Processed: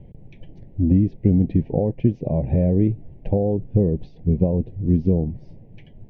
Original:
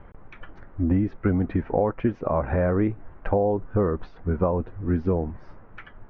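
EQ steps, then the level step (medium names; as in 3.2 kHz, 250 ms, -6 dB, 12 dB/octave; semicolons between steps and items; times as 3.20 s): Butterworth band-stop 1.3 kHz, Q 0.59; peaking EQ 140 Hz +11.5 dB 1.2 oct; band-stop 1.4 kHz, Q 12; 0.0 dB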